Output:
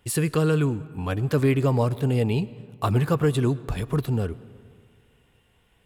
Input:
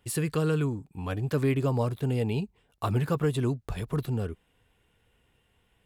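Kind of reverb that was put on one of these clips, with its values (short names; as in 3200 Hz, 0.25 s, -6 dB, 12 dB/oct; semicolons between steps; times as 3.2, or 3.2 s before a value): digital reverb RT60 2 s, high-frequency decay 0.55×, pre-delay 65 ms, DRR 18.5 dB; gain +5 dB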